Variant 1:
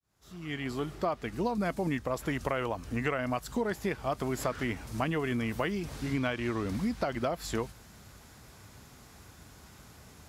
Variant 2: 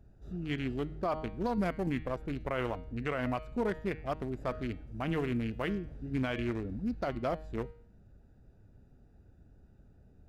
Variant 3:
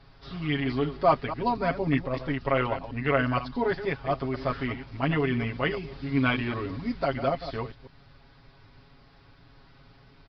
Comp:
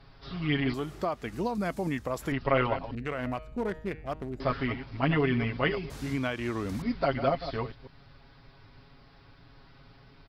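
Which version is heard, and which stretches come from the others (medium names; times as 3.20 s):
3
0.74–2.32 s: from 1
2.95–4.40 s: from 2
5.90–6.82 s: from 1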